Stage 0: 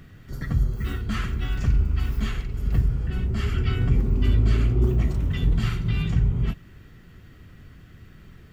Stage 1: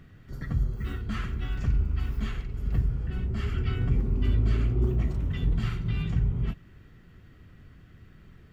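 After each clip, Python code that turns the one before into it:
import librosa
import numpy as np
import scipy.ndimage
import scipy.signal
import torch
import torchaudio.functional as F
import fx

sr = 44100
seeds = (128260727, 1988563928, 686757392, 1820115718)

y = fx.high_shelf(x, sr, hz=4300.0, db=-6.5)
y = y * 10.0 ** (-4.5 / 20.0)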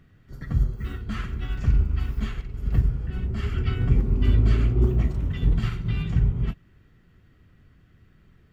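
y = fx.upward_expand(x, sr, threshold_db=-41.0, expansion=1.5)
y = y * 10.0 ** (6.0 / 20.0)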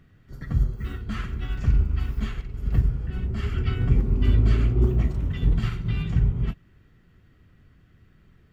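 y = x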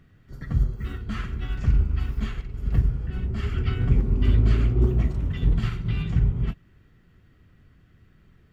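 y = fx.doppler_dist(x, sr, depth_ms=0.2)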